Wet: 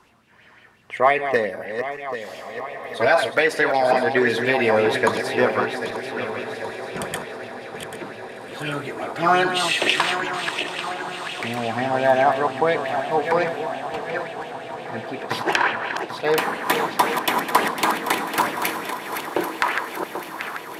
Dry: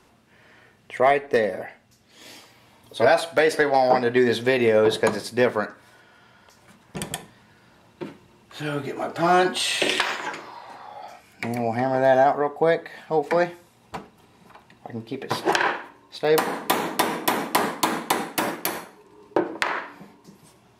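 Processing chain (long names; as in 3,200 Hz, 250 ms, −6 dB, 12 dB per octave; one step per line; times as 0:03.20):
feedback delay that plays each chunk backwards 394 ms, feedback 67%, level −7.5 dB
feedback delay with all-pass diffusion 1,660 ms, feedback 61%, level −14 dB
auto-filter bell 5.7 Hz 980–2,900 Hz +10 dB
level −2 dB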